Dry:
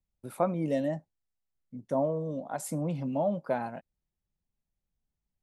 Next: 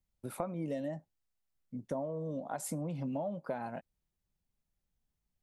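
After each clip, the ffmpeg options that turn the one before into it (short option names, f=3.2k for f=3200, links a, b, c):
-af "acompressor=threshold=-35dB:ratio=6,volume=1dB"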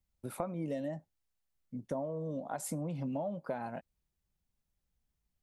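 -af "equalizer=f=60:t=o:w=0.77:g=4.5"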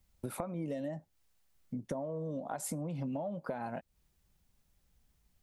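-af "acompressor=threshold=-50dB:ratio=3,volume=11dB"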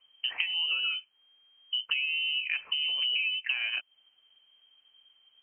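-af "lowpass=f=2.7k:t=q:w=0.5098,lowpass=f=2.7k:t=q:w=0.6013,lowpass=f=2.7k:t=q:w=0.9,lowpass=f=2.7k:t=q:w=2.563,afreqshift=-3200,volume=7.5dB"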